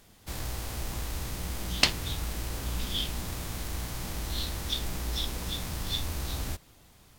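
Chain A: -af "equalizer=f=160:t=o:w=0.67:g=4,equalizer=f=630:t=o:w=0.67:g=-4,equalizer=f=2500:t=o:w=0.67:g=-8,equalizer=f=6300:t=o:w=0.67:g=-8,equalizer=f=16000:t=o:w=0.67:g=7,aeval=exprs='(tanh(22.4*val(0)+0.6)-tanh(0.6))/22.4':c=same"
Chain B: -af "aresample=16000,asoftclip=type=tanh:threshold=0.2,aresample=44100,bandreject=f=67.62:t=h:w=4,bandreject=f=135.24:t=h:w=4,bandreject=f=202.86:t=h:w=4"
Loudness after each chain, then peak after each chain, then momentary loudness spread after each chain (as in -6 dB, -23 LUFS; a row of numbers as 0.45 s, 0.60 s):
-37.5 LUFS, -34.5 LUFS; -23.5 dBFS, -11.0 dBFS; 3 LU, 8 LU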